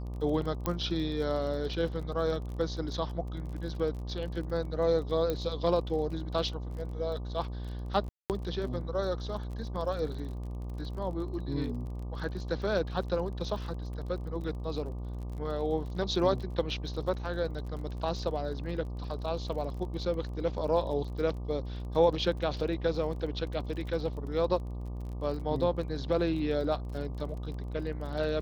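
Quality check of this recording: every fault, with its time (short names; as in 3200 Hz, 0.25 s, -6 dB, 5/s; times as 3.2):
buzz 60 Hz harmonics 20 -37 dBFS
crackle 34/s -40 dBFS
0.66 pop -16 dBFS
5.3 pop -18 dBFS
8.09–8.3 gap 0.208 s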